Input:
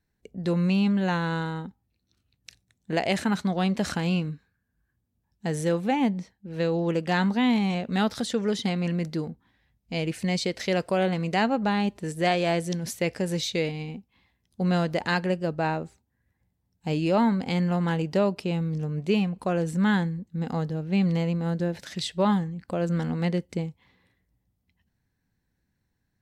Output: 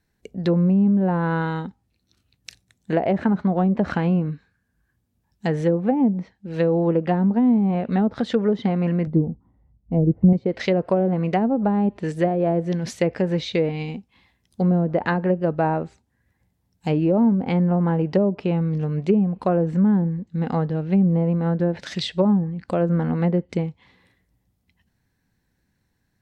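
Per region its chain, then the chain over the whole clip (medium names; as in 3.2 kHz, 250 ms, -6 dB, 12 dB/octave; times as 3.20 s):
9.07–10.33 s: Savitzky-Golay filter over 65 samples + tilt EQ -3.5 dB/octave + upward expansion, over -28 dBFS
whole clip: low-pass that closes with the level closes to 450 Hz, closed at -19.5 dBFS; bass shelf 180 Hz -3 dB; trim +7 dB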